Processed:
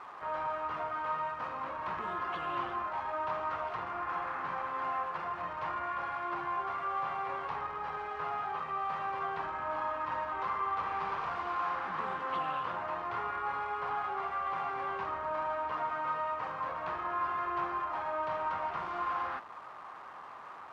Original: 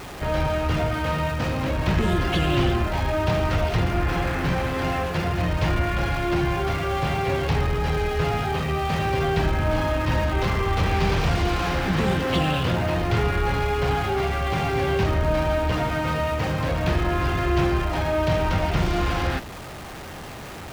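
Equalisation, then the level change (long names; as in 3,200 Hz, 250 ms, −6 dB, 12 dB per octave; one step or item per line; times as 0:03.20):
resonant band-pass 1,100 Hz, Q 4.1
0.0 dB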